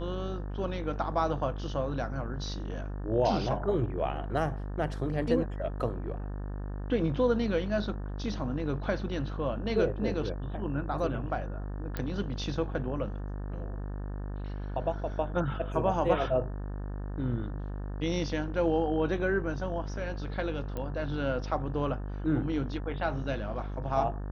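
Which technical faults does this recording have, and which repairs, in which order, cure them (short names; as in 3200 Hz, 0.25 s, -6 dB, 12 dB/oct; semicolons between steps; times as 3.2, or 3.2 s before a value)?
buzz 50 Hz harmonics 36 -36 dBFS
11.97 pop -20 dBFS
20.77 pop -23 dBFS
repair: de-click; de-hum 50 Hz, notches 36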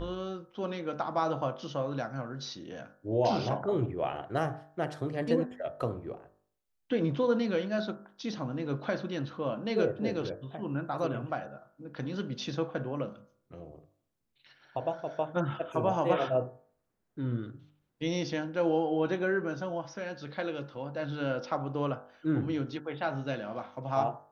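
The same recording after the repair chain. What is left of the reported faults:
none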